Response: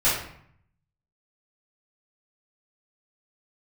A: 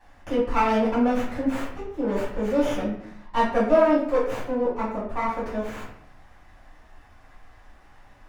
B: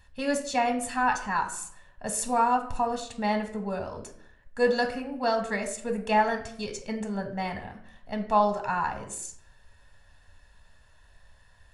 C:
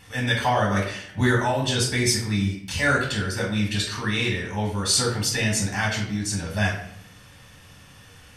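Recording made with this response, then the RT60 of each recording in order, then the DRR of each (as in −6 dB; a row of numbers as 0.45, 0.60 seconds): A; 0.65, 0.65, 0.65 seconds; −12.0, 6.0, −2.5 decibels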